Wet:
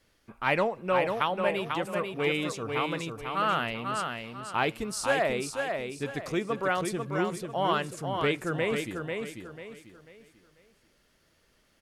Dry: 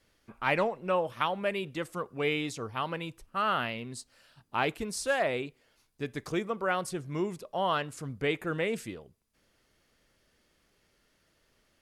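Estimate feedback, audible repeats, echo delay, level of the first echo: 33%, 4, 493 ms, -5.0 dB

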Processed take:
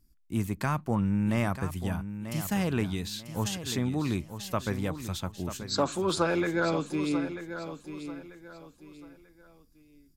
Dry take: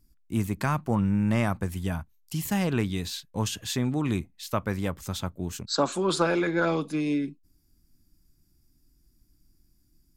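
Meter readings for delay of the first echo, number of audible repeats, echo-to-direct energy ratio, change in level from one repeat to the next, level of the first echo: 940 ms, 3, -10.0 dB, -10.0 dB, -10.5 dB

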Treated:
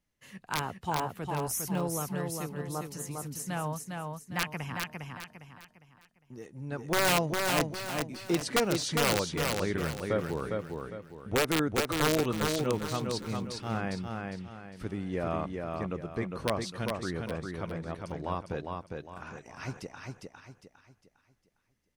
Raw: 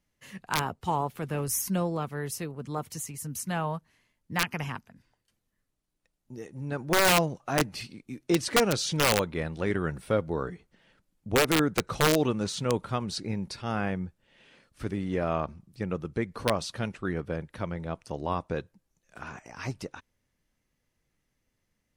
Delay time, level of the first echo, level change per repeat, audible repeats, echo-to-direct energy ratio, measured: 405 ms, -4.0 dB, -9.0 dB, 4, -3.5 dB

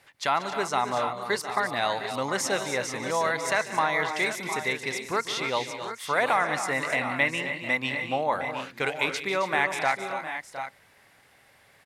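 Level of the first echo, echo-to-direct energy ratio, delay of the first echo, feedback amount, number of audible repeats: -16.5 dB, -5.0 dB, 145 ms, no regular repeats, 5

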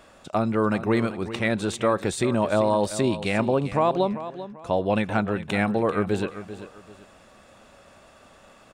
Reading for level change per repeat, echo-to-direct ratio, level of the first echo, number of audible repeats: -10.0 dB, -12.5 dB, -13.0 dB, 2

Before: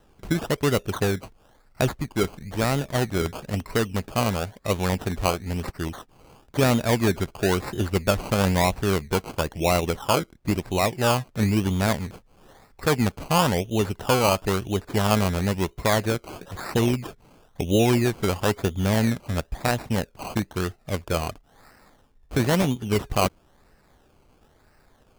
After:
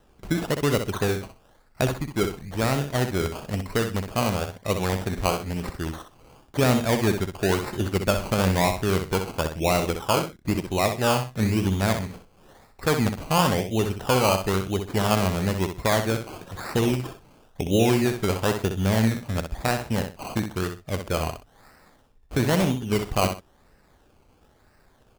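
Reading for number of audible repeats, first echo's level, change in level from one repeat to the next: 2, -7.5 dB, -13.0 dB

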